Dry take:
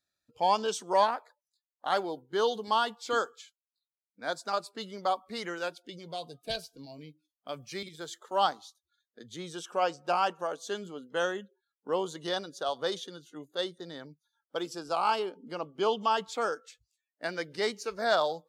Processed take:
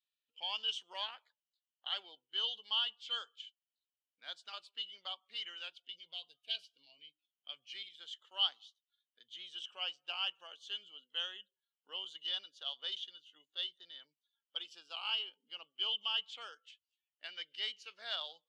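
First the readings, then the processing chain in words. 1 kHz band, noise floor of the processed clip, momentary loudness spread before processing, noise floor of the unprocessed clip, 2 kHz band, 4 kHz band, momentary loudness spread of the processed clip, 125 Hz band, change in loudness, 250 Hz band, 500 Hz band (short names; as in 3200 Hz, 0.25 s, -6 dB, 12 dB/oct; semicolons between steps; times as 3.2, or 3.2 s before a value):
-21.0 dB, under -85 dBFS, 15 LU, under -85 dBFS, -10.0 dB, +3.0 dB, 18 LU, under -35 dB, -7.5 dB, under -30 dB, -27.0 dB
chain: band-pass 3000 Hz, Q 12; gain +9.5 dB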